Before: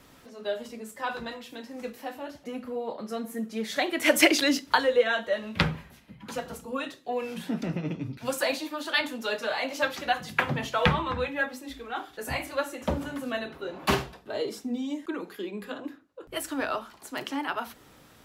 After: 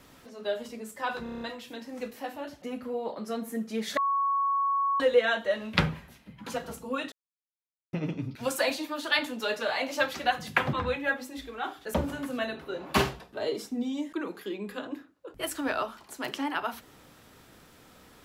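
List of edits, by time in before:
1.23 stutter 0.03 s, 7 plays
3.79–4.82 bleep 1110 Hz -23.5 dBFS
6.94–7.75 mute
10.55–11.05 cut
12.26–12.87 cut

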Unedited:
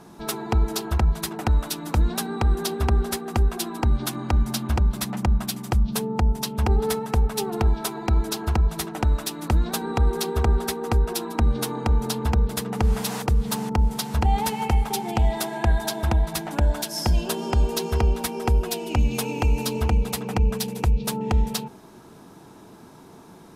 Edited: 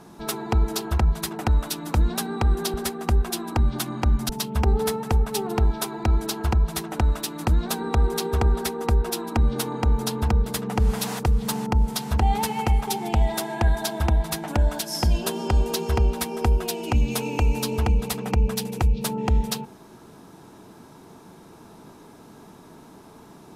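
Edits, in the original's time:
2.74–3.01 cut
4.56–6.32 cut

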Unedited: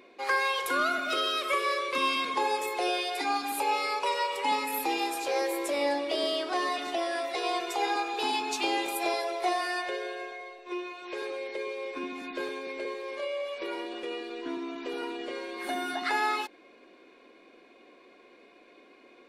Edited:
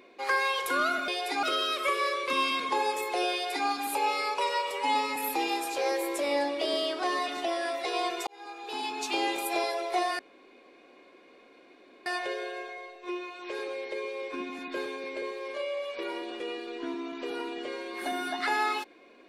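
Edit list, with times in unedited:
2.97–3.32 copy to 1.08
4.36–4.66 stretch 1.5×
7.77–8.73 fade in
9.69 insert room tone 1.87 s

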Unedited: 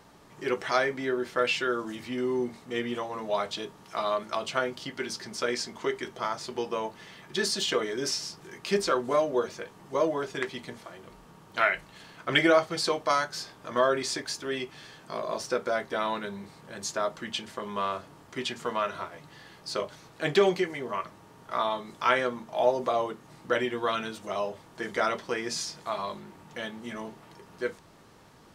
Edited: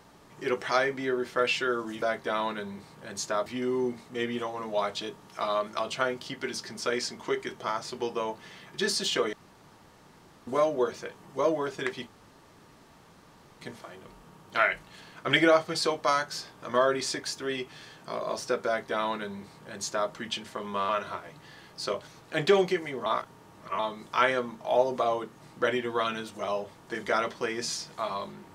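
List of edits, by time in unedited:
7.89–9.03 room tone
10.63 insert room tone 1.54 s
15.68–17.12 copy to 2.02
17.91–18.77 cut
20.94–21.67 reverse

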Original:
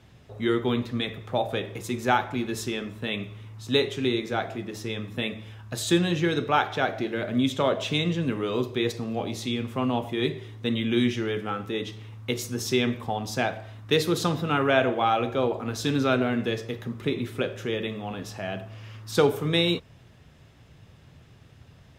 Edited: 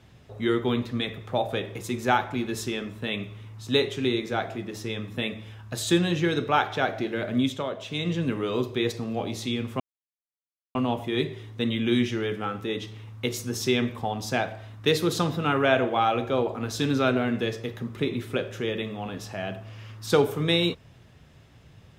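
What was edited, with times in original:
7.41–8.15 dip -8 dB, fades 0.25 s
9.8 insert silence 0.95 s

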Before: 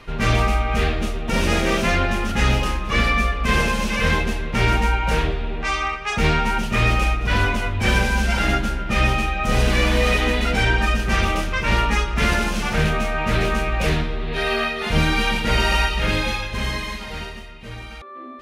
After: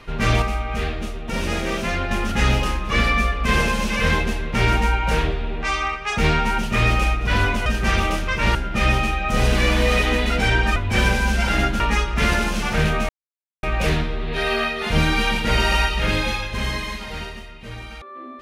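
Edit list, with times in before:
0.42–2.11 gain -4.5 dB
7.66–8.7 swap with 10.91–11.8
13.09–13.63 mute

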